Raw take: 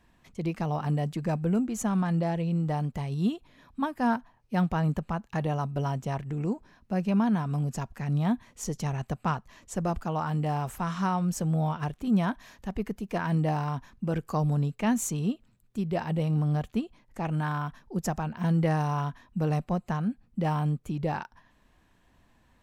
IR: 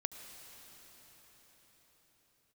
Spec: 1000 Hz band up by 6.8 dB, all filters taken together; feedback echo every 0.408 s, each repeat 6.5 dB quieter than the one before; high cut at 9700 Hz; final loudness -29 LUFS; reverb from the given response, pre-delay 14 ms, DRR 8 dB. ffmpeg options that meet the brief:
-filter_complex "[0:a]lowpass=9.7k,equalizer=f=1k:t=o:g=8.5,aecho=1:1:408|816|1224|1632|2040|2448:0.473|0.222|0.105|0.0491|0.0231|0.0109,asplit=2[a][b];[1:a]atrim=start_sample=2205,adelay=14[c];[b][c]afir=irnorm=-1:irlink=0,volume=-7.5dB[d];[a][d]amix=inputs=2:normalize=0,volume=-3dB"

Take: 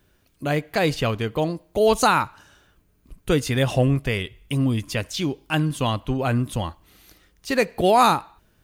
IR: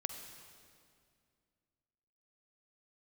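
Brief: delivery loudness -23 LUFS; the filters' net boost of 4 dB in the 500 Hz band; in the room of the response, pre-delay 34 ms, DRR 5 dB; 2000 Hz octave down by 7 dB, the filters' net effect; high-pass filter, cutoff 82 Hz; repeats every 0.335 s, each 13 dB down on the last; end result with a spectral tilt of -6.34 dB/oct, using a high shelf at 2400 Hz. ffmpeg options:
-filter_complex "[0:a]highpass=82,equalizer=f=500:t=o:g=5.5,equalizer=f=2k:t=o:g=-7.5,highshelf=f=2.4k:g=-5,aecho=1:1:335|670|1005:0.224|0.0493|0.0108,asplit=2[a][b];[1:a]atrim=start_sample=2205,adelay=34[c];[b][c]afir=irnorm=-1:irlink=0,volume=-5dB[d];[a][d]amix=inputs=2:normalize=0,volume=-3dB"

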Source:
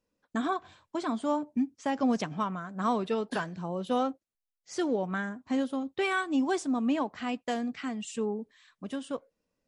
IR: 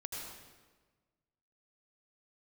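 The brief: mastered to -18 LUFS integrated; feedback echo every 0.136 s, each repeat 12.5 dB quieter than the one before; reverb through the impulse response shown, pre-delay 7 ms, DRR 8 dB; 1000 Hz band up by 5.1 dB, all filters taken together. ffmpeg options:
-filter_complex "[0:a]equalizer=f=1k:t=o:g=6.5,aecho=1:1:136|272|408:0.237|0.0569|0.0137,asplit=2[a][b];[1:a]atrim=start_sample=2205,adelay=7[c];[b][c]afir=irnorm=-1:irlink=0,volume=-7.5dB[d];[a][d]amix=inputs=2:normalize=0,volume=10.5dB"

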